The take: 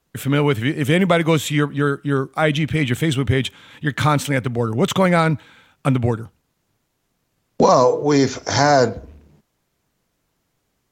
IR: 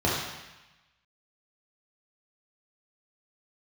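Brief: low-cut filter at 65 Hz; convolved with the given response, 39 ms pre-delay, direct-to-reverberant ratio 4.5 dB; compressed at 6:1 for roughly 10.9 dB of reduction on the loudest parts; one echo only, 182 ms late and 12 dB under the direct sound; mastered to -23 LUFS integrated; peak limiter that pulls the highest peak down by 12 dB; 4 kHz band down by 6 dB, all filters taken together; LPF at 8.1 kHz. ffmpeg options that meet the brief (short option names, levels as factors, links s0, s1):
-filter_complex "[0:a]highpass=65,lowpass=8100,equalizer=f=4000:t=o:g=-8,acompressor=threshold=0.0891:ratio=6,alimiter=limit=0.112:level=0:latency=1,aecho=1:1:182:0.251,asplit=2[s0][s1];[1:a]atrim=start_sample=2205,adelay=39[s2];[s1][s2]afir=irnorm=-1:irlink=0,volume=0.112[s3];[s0][s3]amix=inputs=2:normalize=0,volume=1.5"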